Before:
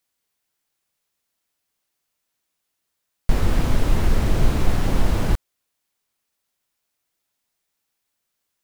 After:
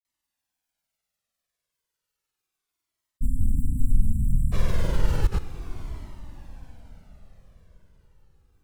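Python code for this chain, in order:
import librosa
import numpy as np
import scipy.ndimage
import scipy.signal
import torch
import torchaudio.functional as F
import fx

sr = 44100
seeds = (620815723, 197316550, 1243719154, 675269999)

p1 = fx.spec_erase(x, sr, start_s=3.13, length_s=1.44, low_hz=280.0, high_hz=7400.0)
p2 = fx.granulator(p1, sr, seeds[0], grain_ms=100.0, per_s=20.0, spray_ms=100.0, spread_st=0)
p3 = p2 + fx.echo_diffused(p2, sr, ms=687, feedback_pct=43, wet_db=-13, dry=0)
y = fx.comb_cascade(p3, sr, direction='falling', hz=0.33)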